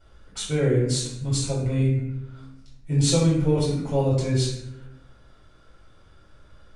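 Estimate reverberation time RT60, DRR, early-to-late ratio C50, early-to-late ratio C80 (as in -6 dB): 0.85 s, -9.5 dB, 1.5 dB, 4.5 dB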